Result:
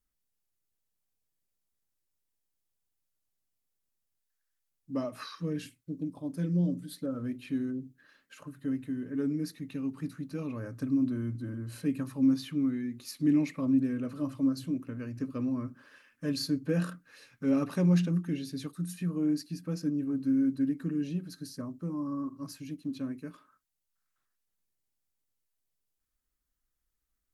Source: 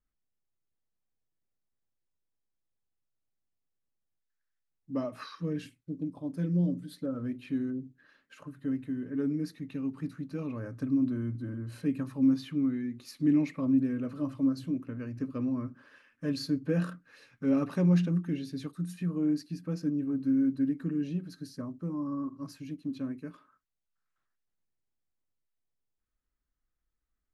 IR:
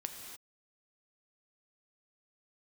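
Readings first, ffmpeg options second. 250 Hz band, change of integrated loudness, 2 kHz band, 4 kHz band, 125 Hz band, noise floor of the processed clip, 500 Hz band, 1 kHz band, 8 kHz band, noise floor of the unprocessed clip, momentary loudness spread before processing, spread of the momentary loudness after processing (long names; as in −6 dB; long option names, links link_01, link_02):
−0.5 dB, −0.5 dB, +1.0 dB, +3.5 dB, −0.5 dB, −82 dBFS, −0.5 dB, 0.0 dB, can't be measured, −83 dBFS, 12 LU, 12 LU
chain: -af "aemphasis=mode=production:type=cd"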